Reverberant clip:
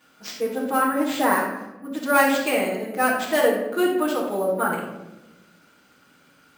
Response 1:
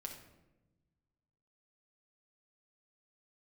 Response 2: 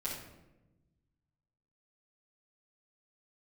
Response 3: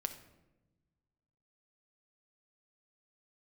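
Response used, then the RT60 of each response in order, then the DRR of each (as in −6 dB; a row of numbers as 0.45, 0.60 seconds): 2; 1.0, 1.0, 1.1 seconds; 0.5, −9.0, 6.5 decibels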